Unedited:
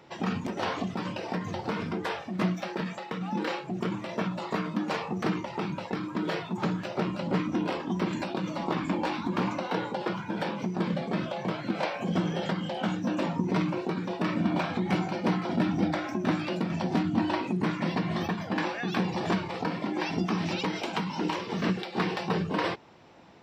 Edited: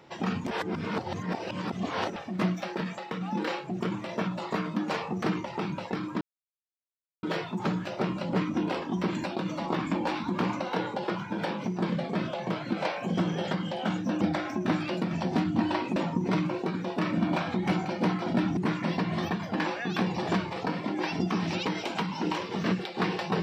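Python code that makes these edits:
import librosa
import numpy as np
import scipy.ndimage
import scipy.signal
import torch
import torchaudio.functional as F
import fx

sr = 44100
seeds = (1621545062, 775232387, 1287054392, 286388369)

y = fx.edit(x, sr, fx.reverse_span(start_s=0.51, length_s=1.65),
    fx.insert_silence(at_s=6.21, length_s=1.02),
    fx.move(start_s=15.8, length_s=1.75, to_s=13.19), tone=tone)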